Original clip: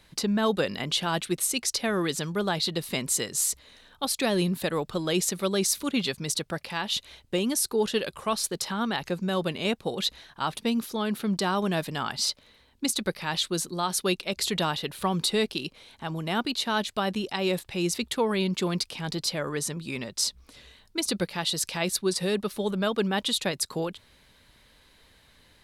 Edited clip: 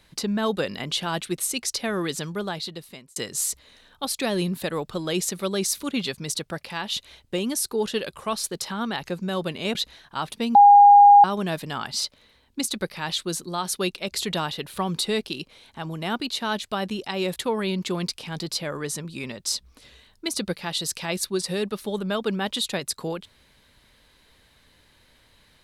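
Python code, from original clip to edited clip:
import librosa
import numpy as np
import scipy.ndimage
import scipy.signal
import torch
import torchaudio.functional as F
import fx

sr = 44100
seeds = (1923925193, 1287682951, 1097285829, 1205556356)

y = fx.edit(x, sr, fx.fade_out_span(start_s=2.23, length_s=0.93),
    fx.cut(start_s=9.75, length_s=0.25),
    fx.bleep(start_s=10.8, length_s=0.69, hz=814.0, db=-7.5),
    fx.cut(start_s=17.61, length_s=0.47), tone=tone)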